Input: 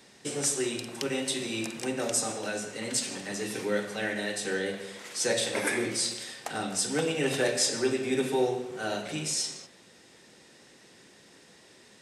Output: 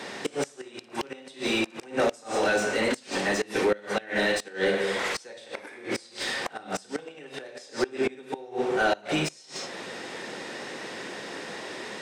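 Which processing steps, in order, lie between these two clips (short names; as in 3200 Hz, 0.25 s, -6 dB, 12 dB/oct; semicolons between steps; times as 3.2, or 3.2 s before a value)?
dynamic EQ 4400 Hz, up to +3 dB, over -40 dBFS, Q 0.82; compressor 2:1, threshold -43 dBFS, peak gain reduction 12.5 dB; flutter echo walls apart 9.9 m, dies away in 0.28 s; flipped gate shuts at -28 dBFS, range -26 dB; overdrive pedal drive 27 dB, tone 1200 Hz, clips at -14 dBFS; gain +4.5 dB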